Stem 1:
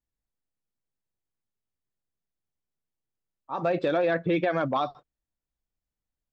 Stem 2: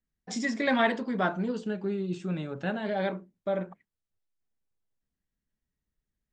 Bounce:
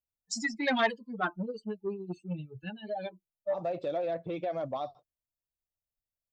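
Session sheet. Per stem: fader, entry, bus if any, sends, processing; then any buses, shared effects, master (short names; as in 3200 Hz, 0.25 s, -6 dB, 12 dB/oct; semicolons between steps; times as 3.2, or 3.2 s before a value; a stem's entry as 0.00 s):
-13.5 dB, 0.00 s, no send, fifteen-band EQ 100 Hz +10 dB, 630 Hz +10 dB, 1600 Hz -10 dB
+2.0 dB, 0.00 s, no send, per-bin expansion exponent 3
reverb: off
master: high shelf 3200 Hz +6 dB; core saturation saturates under 930 Hz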